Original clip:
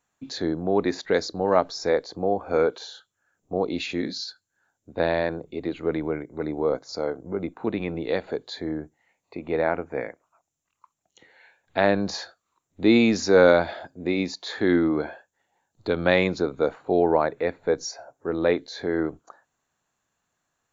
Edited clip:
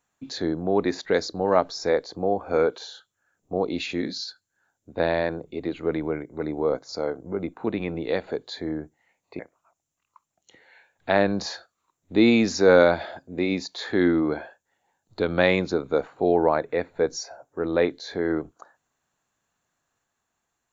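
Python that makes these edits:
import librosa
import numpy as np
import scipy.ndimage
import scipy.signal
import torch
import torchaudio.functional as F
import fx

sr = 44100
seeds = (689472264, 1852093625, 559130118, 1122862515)

y = fx.edit(x, sr, fx.cut(start_s=9.39, length_s=0.68), tone=tone)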